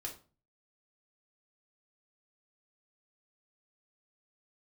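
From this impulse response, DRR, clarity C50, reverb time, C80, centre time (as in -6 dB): -0.5 dB, 10.0 dB, 0.35 s, 16.0 dB, 17 ms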